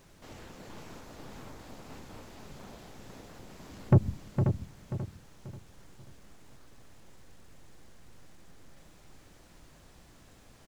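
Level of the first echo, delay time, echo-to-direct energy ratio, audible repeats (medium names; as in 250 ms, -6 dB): -7.5 dB, 459 ms, -4.0 dB, 7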